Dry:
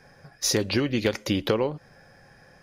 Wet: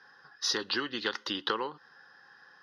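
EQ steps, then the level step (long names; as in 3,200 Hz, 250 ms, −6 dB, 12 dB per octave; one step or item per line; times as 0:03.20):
high-pass filter 630 Hz 12 dB per octave
high-frequency loss of the air 110 metres
phaser with its sweep stopped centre 2,300 Hz, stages 6
+4.0 dB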